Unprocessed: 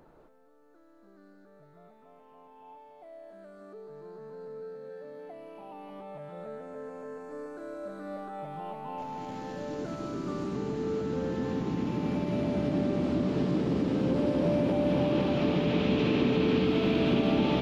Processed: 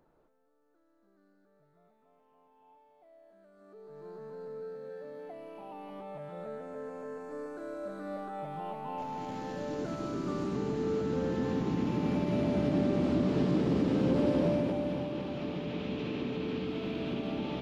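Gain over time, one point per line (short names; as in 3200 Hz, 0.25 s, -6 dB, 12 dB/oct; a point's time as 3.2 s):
3.51 s -11 dB
4.08 s 0 dB
14.36 s 0 dB
15.11 s -9.5 dB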